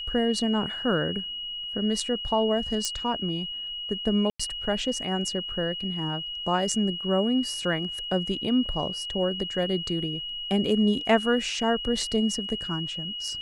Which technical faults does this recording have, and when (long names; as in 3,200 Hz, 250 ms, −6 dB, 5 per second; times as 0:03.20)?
whistle 2,900 Hz −32 dBFS
0:02.85: click −13 dBFS
0:04.30–0:04.39: drop-out 95 ms